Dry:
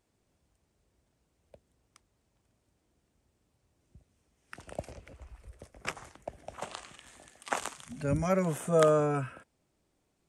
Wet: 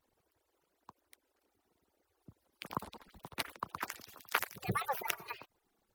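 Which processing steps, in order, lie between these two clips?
median-filter separation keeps percussive; dynamic EQ 2300 Hz, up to -5 dB, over -53 dBFS, Q 1; wide varispeed 1.73×; gain +2.5 dB

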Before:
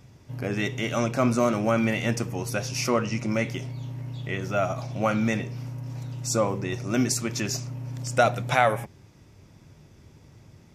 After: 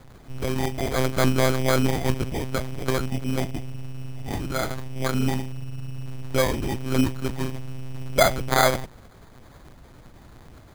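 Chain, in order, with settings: 2.9–5.49 bell 700 Hz -6.5 dB 1.8 oct; 5.52–6.06 spectral delete 260–1500 Hz; requantised 8-bit, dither triangular; low shelf 190 Hz +2.5 dB; monotone LPC vocoder at 8 kHz 130 Hz; sample-and-hold 16×; gain +2 dB

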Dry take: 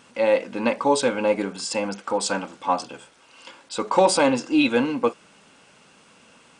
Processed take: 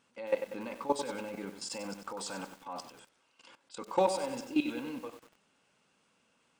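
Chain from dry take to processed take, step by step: level quantiser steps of 16 dB; lo-fi delay 95 ms, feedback 55%, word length 7-bit, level -8.5 dB; gain -8 dB

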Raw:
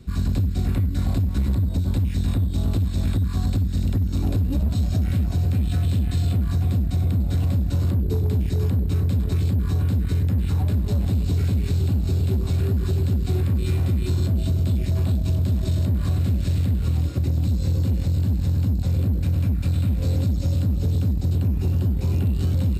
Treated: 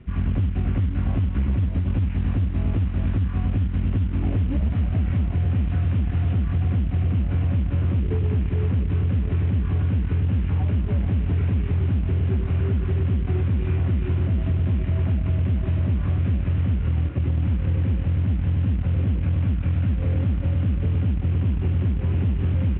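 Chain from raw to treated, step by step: CVSD 16 kbps; air absorption 160 m

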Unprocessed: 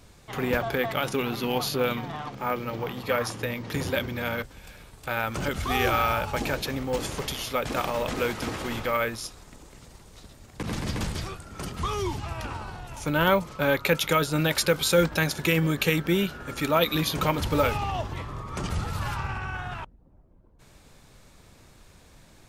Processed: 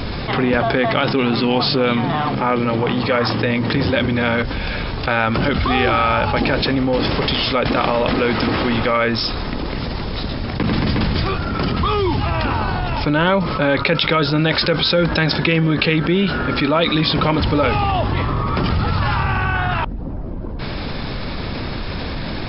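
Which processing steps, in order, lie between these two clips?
brick-wall FIR low-pass 5400 Hz; bell 250 Hz +4 dB 0.72 oct; fast leveller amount 70%; gain +2.5 dB

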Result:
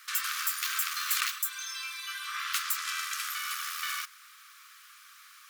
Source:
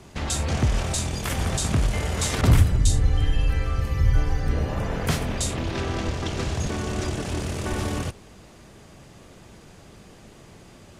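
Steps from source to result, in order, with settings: brick-wall FIR band-pass 540–12000 Hz; speed mistake 7.5 ips tape played at 15 ips

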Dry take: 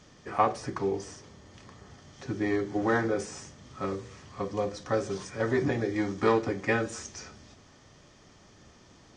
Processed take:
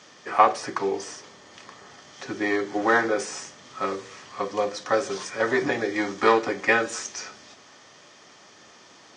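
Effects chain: weighting filter A; gain +8 dB

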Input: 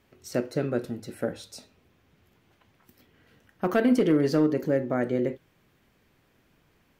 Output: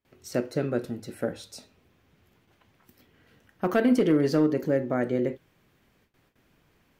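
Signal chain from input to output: gate with hold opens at -55 dBFS

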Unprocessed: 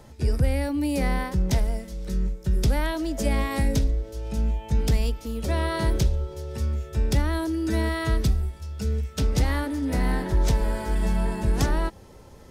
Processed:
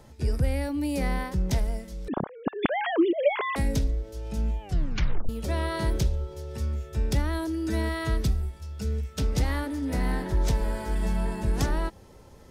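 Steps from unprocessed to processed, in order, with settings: 2.08–3.56 sine-wave speech; 4.61 tape stop 0.68 s; gain -3 dB

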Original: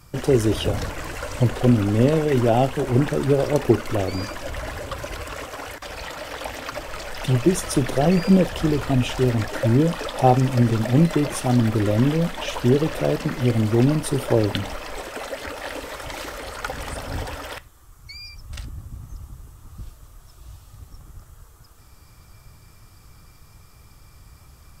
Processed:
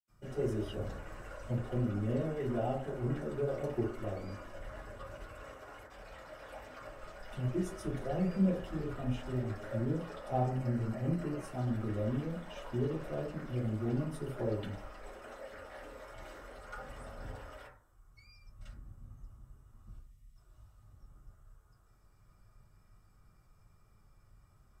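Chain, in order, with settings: 10.4–11.44 notch 3500 Hz, Q 6.1; 19.92–20.28 spectral gain 300–1800 Hz -16 dB; reverb RT60 0.50 s, pre-delay 77 ms, DRR -60 dB

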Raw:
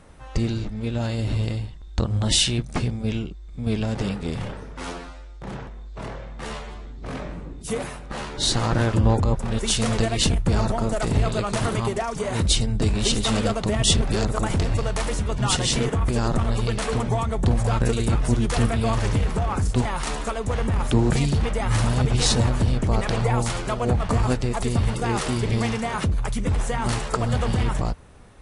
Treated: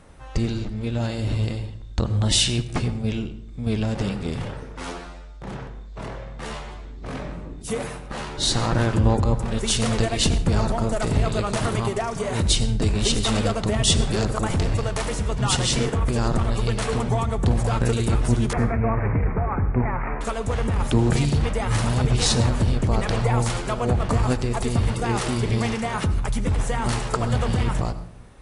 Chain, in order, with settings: 18.53–20.21 steep low-pass 2400 Hz 96 dB/oct; on a send: reverb RT60 0.60 s, pre-delay 74 ms, DRR 13 dB

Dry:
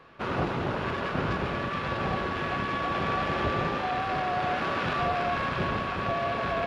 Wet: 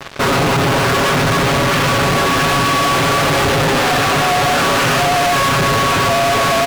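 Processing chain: comb 7.3 ms, depth 94%; fuzz box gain 45 dB, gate -47 dBFS

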